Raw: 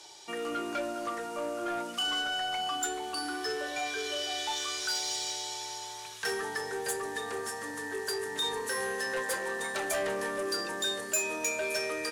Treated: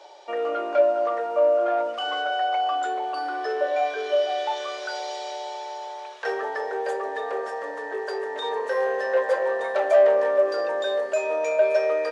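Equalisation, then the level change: resonant high-pass 570 Hz, resonance Q 4.9; tape spacing loss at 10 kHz 29 dB; +6.5 dB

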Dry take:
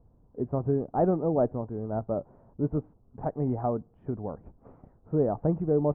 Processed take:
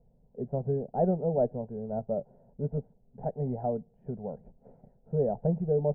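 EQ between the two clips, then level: LPF 1600 Hz 12 dB/oct; fixed phaser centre 310 Hz, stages 6; 0.0 dB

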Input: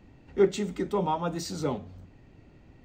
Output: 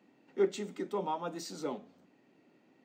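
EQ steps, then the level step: HPF 210 Hz 24 dB/oct; -6.5 dB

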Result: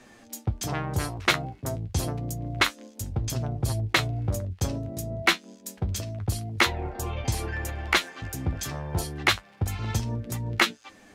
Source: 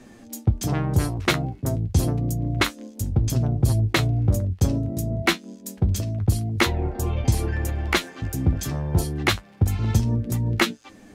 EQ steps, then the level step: low shelf 120 Hz -11 dB; bell 260 Hz -8.5 dB 2.3 oct; high shelf 6000 Hz -5.5 dB; +2.0 dB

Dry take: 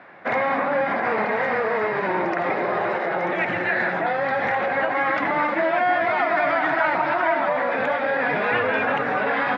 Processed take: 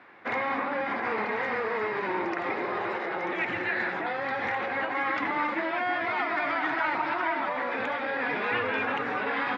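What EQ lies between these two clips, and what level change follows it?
fifteen-band EQ 160 Hz -11 dB, 630 Hz -10 dB, 1600 Hz -4 dB; -2.5 dB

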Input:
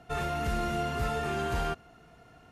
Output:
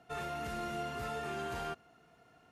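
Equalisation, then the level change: HPF 180 Hz 6 dB/oct; -6.5 dB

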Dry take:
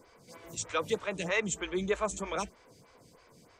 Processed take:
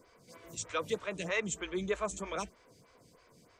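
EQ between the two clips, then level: notch 840 Hz, Q 12; -3.0 dB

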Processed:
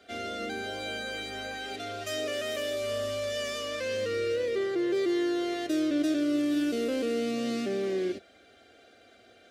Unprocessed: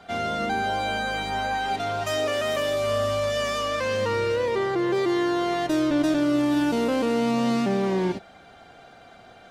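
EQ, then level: HPF 85 Hz; fixed phaser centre 380 Hz, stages 4; -3.5 dB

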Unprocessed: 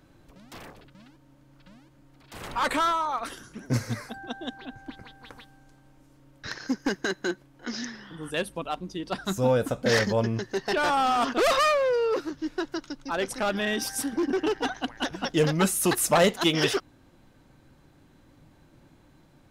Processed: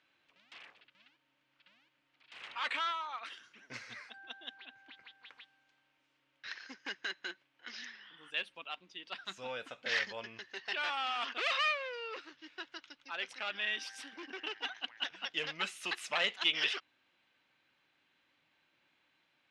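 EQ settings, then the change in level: band-pass 2700 Hz, Q 2; air absorption 57 m; 0.0 dB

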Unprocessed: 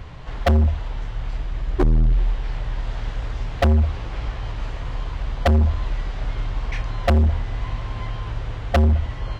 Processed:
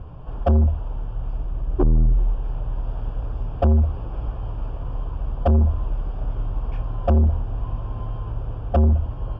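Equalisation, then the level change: running mean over 22 samples; 0.0 dB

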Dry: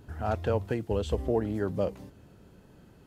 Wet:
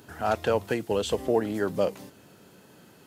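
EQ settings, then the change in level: HPF 130 Hz 12 dB/oct; tilt +2 dB/oct; +6.0 dB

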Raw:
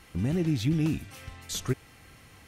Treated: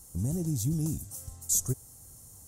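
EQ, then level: EQ curve 110 Hz 0 dB, 320 Hz -8 dB, 550 Hz -6 dB, 910 Hz -8 dB, 2400 Hz -27 dB, 4400 Hz -8 dB, 7100 Hz +13 dB; 0.0 dB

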